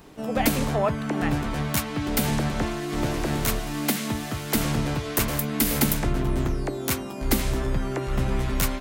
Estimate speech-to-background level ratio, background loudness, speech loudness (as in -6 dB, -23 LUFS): -3.5 dB, -26.0 LUFS, -29.5 LUFS